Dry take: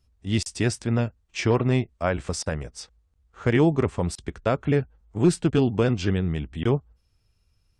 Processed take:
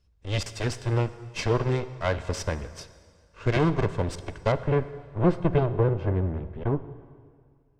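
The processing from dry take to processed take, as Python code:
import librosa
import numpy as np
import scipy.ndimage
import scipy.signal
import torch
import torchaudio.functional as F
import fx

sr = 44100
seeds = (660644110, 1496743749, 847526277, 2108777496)

y = fx.lower_of_two(x, sr, delay_ms=1.9)
y = fx.lowpass(y, sr, hz=fx.steps((0.0, 6400.0), (4.52, 1900.0), (5.66, 1100.0)), slope=12)
y = fx.rev_plate(y, sr, seeds[0], rt60_s=2.0, hf_ratio=0.9, predelay_ms=0, drr_db=12.5)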